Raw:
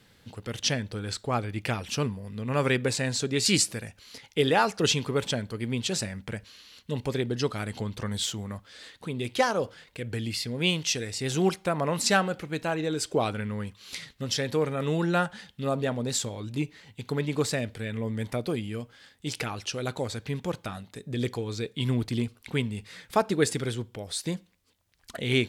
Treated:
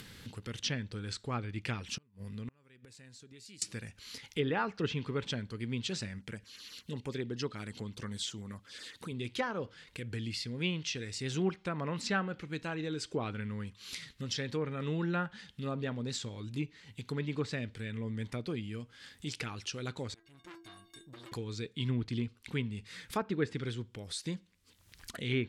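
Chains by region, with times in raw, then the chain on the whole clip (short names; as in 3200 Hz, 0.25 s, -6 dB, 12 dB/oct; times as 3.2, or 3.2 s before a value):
1.95–3.62 compressor 1.5:1, threshold -34 dBFS + flipped gate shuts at -26 dBFS, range -33 dB
6.19–9.12 LFO notch saw down 8.1 Hz 630–5000 Hz + low shelf 96 Hz -10 dB
20.14–21.32 dynamic EQ 130 Hz, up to +5 dB, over -44 dBFS, Q 1.4 + metallic resonator 330 Hz, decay 0.34 s, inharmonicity 0.03 + core saturation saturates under 2000 Hz
whole clip: treble ducked by the level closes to 2000 Hz, closed at -20 dBFS; bell 670 Hz -9 dB 0.99 oct; upward compressor, threshold -33 dBFS; gain -5.5 dB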